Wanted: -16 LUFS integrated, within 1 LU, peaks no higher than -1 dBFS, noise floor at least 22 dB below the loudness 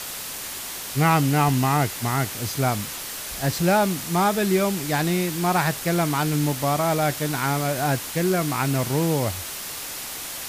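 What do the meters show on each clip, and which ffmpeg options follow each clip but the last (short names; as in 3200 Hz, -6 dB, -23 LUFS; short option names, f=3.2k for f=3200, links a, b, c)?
noise floor -34 dBFS; noise floor target -45 dBFS; loudness -23.0 LUFS; peak -8.0 dBFS; loudness target -16.0 LUFS
-> -af "afftdn=nr=11:nf=-34"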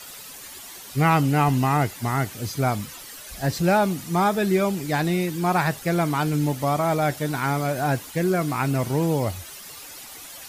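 noise floor -41 dBFS; noise floor target -45 dBFS
-> -af "afftdn=nr=6:nf=-41"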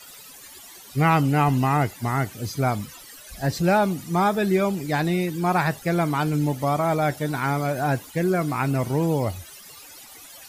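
noise floor -45 dBFS; noise floor target -46 dBFS
-> -af "afftdn=nr=6:nf=-45"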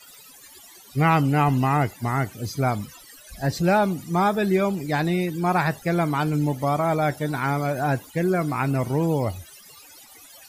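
noise floor -48 dBFS; loudness -23.5 LUFS; peak -9.0 dBFS; loudness target -16.0 LUFS
-> -af "volume=7.5dB"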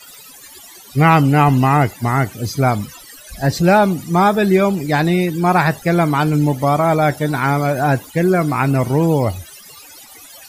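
loudness -16.0 LUFS; peak -1.5 dBFS; noise floor -41 dBFS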